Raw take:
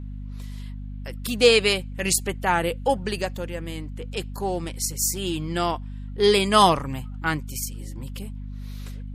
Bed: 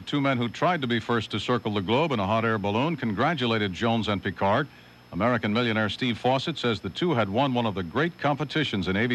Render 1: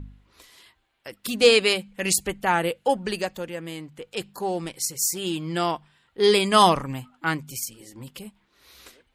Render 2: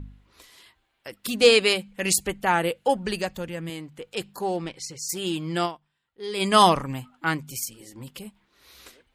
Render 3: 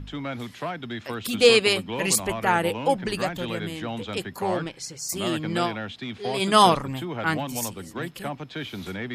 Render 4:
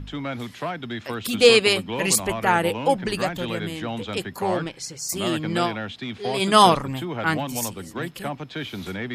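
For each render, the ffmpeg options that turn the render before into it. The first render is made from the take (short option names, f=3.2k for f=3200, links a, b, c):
-af "bandreject=f=50:t=h:w=4,bandreject=f=100:t=h:w=4,bandreject=f=150:t=h:w=4,bandreject=f=200:t=h:w=4,bandreject=f=250:t=h:w=4"
-filter_complex "[0:a]asettb=1/sr,asplit=3[a][b][c];[a]atrim=end=2.824[d];[b]atrim=start=2.82:end=3.7,asetpts=PTS-STARTPTS,afade=t=in:d=0.004:c=qsin,afade=t=out:st=0.876:d=0.004:c=qsin,asubboost=boost=8:cutoff=220[e];[c]atrim=start=3.696[f];[d][e]acrossfade=d=0.004:c1=hsin:c2=qsin[g];[g][f]acrossfade=d=0.004:c1=qsin:c2=hsin,asplit=3[h][i][j];[h]afade=t=out:st=4.56:d=0.02[k];[i]lowpass=4.5k,afade=t=in:st=4.56:d=0.02,afade=t=out:st=5.08:d=0.02[l];[j]afade=t=in:st=5.08:d=0.02[m];[k][l][m]amix=inputs=3:normalize=0,asplit=3[n][o][p];[n]atrim=end=6.03,asetpts=PTS-STARTPTS,afade=t=out:st=5.65:d=0.38:c=exp:silence=0.158489[q];[o]atrim=start=6.03:end=6.04,asetpts=PTS-STARTPTS,volume=-16dB[r];[p]atrim=start=6.04,asetpts=PTS-STARTPTS,afade=t=in:d=0.38:c=exp:silence=0.158489[s];[q][r][s]concat=n=3:v=0:a=1"
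-filter_complex "[1:a]volume=-8dB[a];[0:a][a]amix=inputs=2:normalize=0"
-af "volume=2dB"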